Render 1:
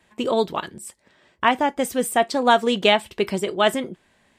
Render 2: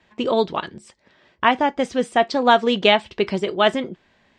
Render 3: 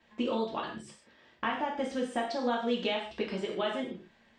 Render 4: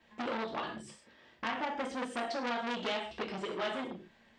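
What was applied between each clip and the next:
LPF 5800 Hz 24 dB/oct; gain +1.5 dB
compressor 6:1, threshold -24 dBFS, peak gain reduction 14 dB; non-linear reverb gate 0.18 s falling, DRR -3 dB; gain -9 dB
core saturation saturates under 2300 Hz

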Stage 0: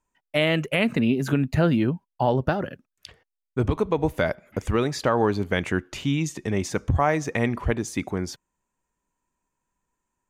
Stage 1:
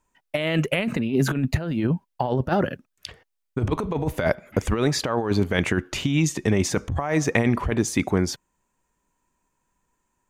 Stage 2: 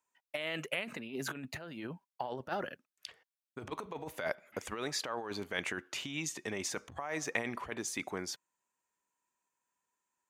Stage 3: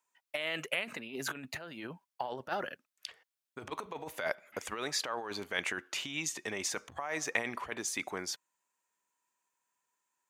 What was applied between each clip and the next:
negative-ratio compressor -24 dBFS, ratio -0.5; gain +3.5 dB
HPF 860 Hz 6 dB/oct; gain -9 dB
low shelf 400 Hz -7.5 dB; gain +3 dB

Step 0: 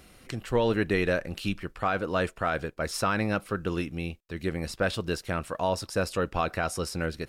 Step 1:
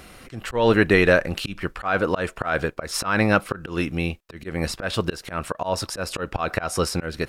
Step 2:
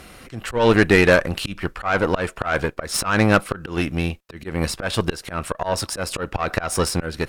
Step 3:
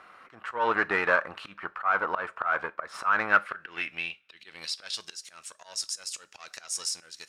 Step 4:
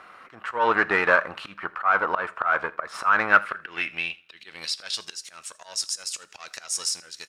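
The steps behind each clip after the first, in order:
bell 1200 Hz +4.5 dB 2.3 oct; auto swell 0.179 s; gain +7.5 dB
dynamic EQ 9100 Hz, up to +4 dB, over -47 dBFS, Q 2.2; added harmonics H 8 -23 dB, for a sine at -3 dBFS; gain +2 dB
band-pass sweep 1200 Hz -> 6400 Hz, 3.05–5.19; two-slope reverb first 0.28 s, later 1.7 s, from -27 dB, DRR 15.5 dB
feedback echo 81 ms, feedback 27%, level -22 dB; gain +4.5 dB

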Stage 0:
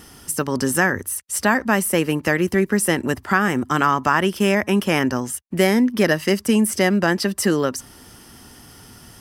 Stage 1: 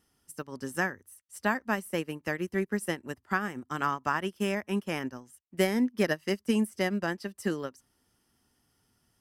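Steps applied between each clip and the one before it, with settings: upward expander 2.5:1, over -27 dBFS; gain -7 dB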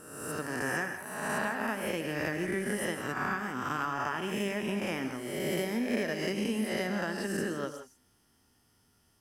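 spectral swells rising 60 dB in 1.14 s; compressor, threshold -29 dBFS, peak gain reduction 10.5 dB; non-linear reverb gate 0.19 s rising, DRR 7.5 dB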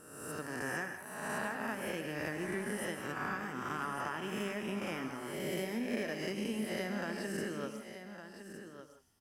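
echo 1.159 s -10.5 dB; gain -5.5 dB

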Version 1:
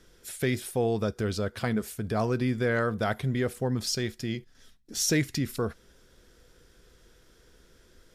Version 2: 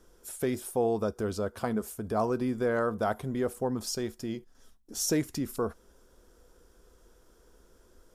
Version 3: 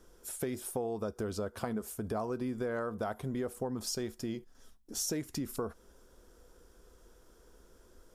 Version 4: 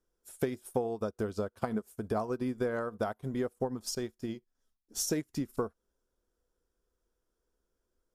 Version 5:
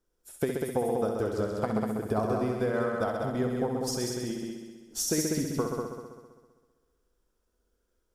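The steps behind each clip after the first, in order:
graphic EQ 125/1000/2000/4000 Hz -9/+5/-10/-8 dB
compressor 6:1, threshold -32 dBFS, peak gain reduction 9.5 dB
upward expander 2.5:1, over -50 dBFS; gain +6.5 dB
multi-head echo 65 ms, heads all three, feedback 52%, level -7 dB; gain +2 dB

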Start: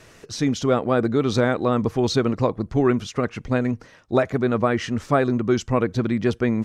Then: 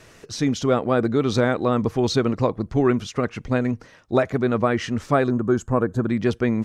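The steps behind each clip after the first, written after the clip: spectral gain 5.3–6.1, 1800–6400 Hz -13 dB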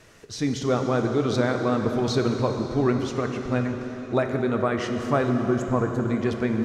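plate-style reverb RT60 4.5 s, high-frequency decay 0.85×, DRR 4 dB; gain -4 dB

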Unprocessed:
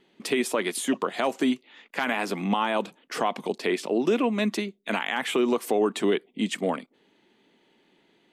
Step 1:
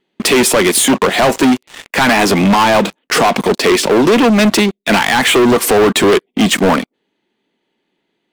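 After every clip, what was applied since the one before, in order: sample leveller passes 5; gain +4.5 dB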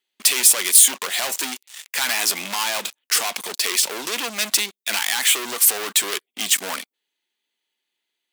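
differentiator; gain +1 dB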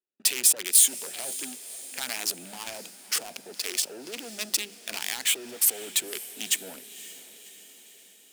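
Wiener smoothing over 41 samples; notches 50/100/150/200 Hz; diffused feedback echo 0.545 s, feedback 57%, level -15.5 dB; gain -5.5 dB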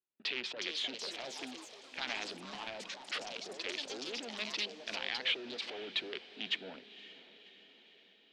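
steep low-pass 4000 Hz 36 dB/oct; echoes that change speed 0.416 s, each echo +4 st, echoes 3, each echo -6 dB; gain -4 dB

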